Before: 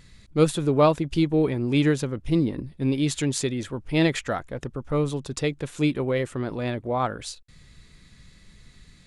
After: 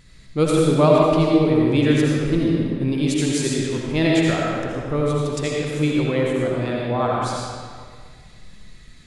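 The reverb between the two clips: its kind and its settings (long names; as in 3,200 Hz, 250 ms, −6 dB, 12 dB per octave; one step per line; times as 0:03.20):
comb and all-pass reverb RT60 1.9 s, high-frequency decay 0.8×, pre-delay 40 ms, DRR −3.5 dB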